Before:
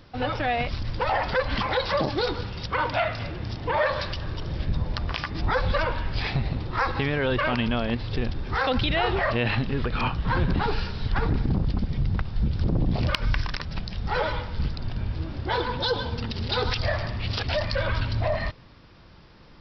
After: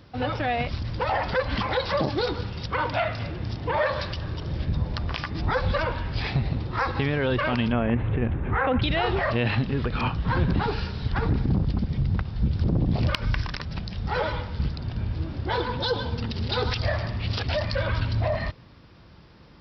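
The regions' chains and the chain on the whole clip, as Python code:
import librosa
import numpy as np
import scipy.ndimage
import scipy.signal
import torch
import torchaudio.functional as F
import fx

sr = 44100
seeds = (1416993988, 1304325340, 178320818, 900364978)

y = fx.chain(x, sr, fx.cheby2_lowpass(hz=4800.0, order=4, stop_db=40),
    fx.env_flatten(amount_pct=50), at=(7.72, 8.82))
y = scipy.signal.sosfilt(scipy.signal.butter(2, 51.0, 'highpass', fs=sr, output='sos'), y)
y = fx.low_shelf(y, sr, hz=370.0, db=4.0)
y = F.gain(torch.from_numpy(y), -1.5).numpy()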